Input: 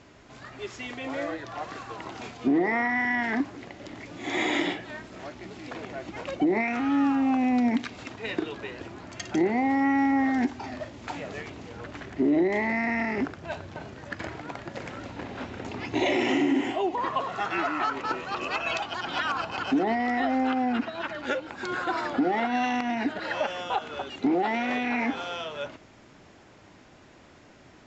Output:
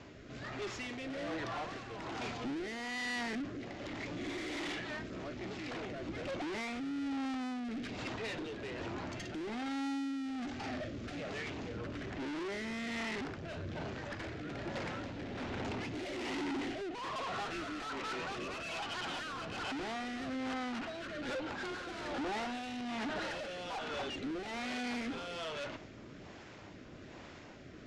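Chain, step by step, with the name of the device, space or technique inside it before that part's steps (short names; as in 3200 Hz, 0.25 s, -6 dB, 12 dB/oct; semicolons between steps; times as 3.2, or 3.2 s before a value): overdriven rotary cabinet (tube stage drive 41 dB, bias 0.4; rotary speaker horn 1.2 Hz); 10.17–11.3 notch 960 Hz, Q 5.5; LPF 6200 Hz 12 dB/oct; gain +5.5 dB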